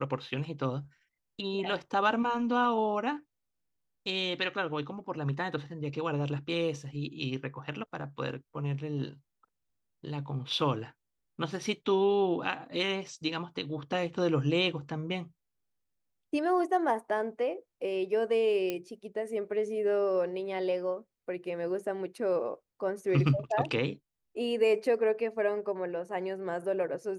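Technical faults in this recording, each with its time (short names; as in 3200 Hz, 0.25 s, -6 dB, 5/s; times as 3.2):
18.7 pop -18 dBFS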